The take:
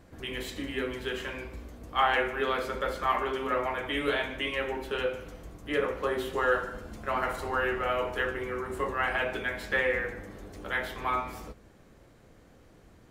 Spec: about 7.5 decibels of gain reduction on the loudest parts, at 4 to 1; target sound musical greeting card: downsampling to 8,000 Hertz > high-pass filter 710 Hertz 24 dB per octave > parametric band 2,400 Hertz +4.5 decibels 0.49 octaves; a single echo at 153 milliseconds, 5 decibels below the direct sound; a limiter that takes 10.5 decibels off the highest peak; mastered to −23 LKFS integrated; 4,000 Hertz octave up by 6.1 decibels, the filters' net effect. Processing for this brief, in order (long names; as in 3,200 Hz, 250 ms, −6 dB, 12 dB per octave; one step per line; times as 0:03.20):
parametric band 4,000 Hz +7 dB
downward compressor 4 to 1, threshold −29 dBFS
brickwall limiter −29 dBFS
single-tap delay 153 ms −5 dB
downsampling to 8,000 Hz
high-pass filter 710 Hz 24 dB per octave
parametric band 2,400 Hz +4.5 dB 0.49 octaves
level +15 dB